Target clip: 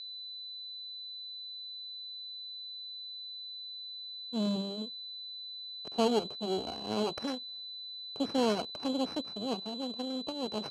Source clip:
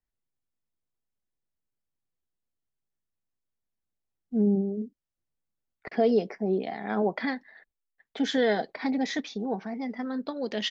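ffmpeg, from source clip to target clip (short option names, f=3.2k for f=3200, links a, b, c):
-filter_complex "[0:a]acrossover=split=260|3600[a][b][c];[b]adynamicsmooth=sensitivity=2.5:basefreq=710[d];[a][d][c]amix=inputs=3:normalize=0,acrusher=samples=12:mix=1:aa=0.000001,aeval=exprs='max(val(0),0)':c=same,equalizer=f=1.9k:t=o:w=0.46:g=-13.5,aeval=exprs='val(0)+0.01*sin(2*PI*4000*n/s)':c=same,highpass=120,lowpass=5.7k"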